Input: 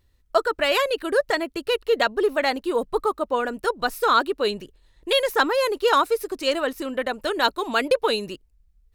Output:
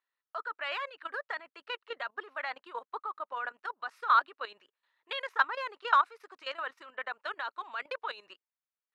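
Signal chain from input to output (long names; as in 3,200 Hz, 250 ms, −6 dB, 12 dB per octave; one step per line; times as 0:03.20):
four-pole ladder band-pass 1,500 Hz, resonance 30%
output level in coarse steps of 14 dB
level +7 dB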